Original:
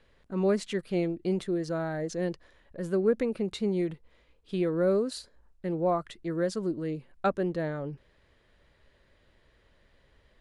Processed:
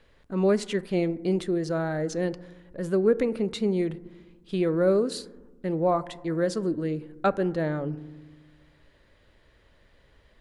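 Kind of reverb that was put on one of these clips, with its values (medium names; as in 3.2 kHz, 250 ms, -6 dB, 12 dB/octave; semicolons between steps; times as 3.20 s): FDN reverb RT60 1.2 s, low-frequency decay 1.45×, high-frequency decay 0.25×, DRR 15.5 dB; trim +3.5 dB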